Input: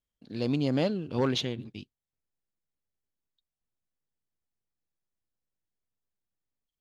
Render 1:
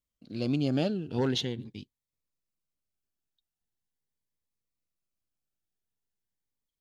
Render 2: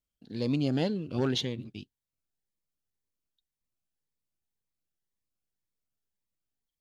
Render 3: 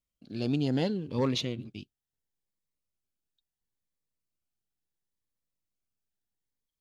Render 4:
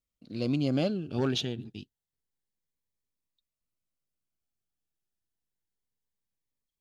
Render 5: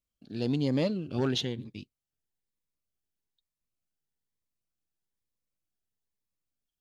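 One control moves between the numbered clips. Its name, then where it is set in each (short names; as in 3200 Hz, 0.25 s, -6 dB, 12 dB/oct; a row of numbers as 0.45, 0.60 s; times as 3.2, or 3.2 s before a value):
cascading phaser, rate: 0.42, 1.9, 0.72, 0.28, 1.1 Hz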